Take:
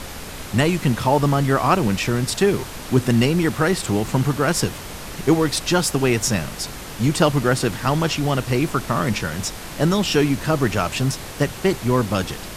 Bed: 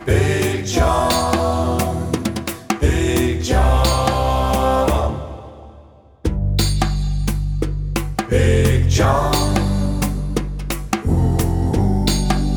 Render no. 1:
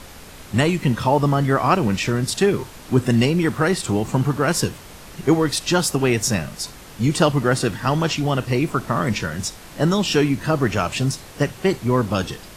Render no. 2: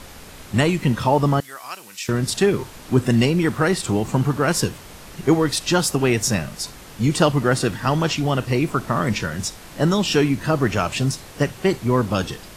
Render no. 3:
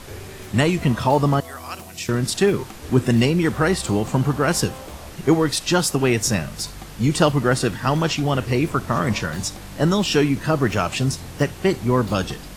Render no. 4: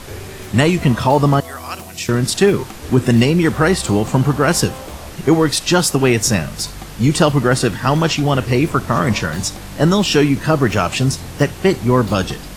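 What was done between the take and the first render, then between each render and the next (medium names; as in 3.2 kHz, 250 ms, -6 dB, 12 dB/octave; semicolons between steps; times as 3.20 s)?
noise print and reduce 7 dB
1.40–2.09 s: differentiator
add bed -22 dB
trim +5 dB; peak limiter -2 dBFS, peak gain reduction 3 dB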